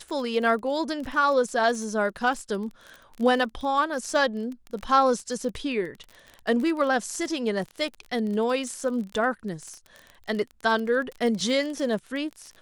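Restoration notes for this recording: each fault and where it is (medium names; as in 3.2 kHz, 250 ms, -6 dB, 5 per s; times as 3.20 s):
crackle 27 per s -32 dBFS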